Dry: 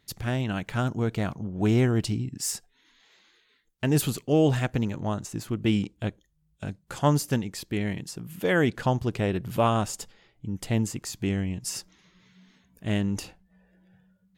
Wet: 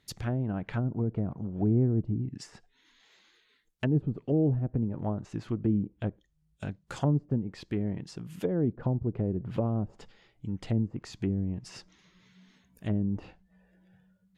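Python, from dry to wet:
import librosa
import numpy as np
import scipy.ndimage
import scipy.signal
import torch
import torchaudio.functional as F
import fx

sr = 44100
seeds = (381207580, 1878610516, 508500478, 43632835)

y = fx.env_lowpass_down(x, sr, base_hz=370.0, full_db=-22.0)
y = y * 10.0 ** (-2.0 / 20.0)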